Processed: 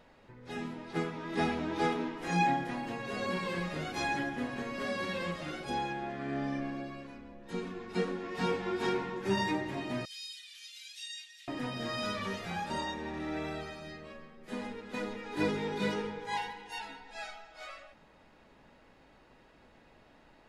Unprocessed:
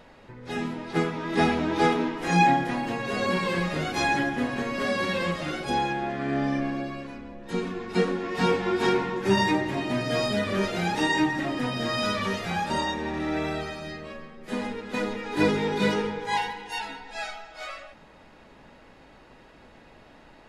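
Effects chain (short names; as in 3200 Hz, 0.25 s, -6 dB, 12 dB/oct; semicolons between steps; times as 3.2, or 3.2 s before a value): 10.05–11.48 inverse Chebyshev high-pass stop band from 690 Hz, stop band 70 dB; gain -8.5 dB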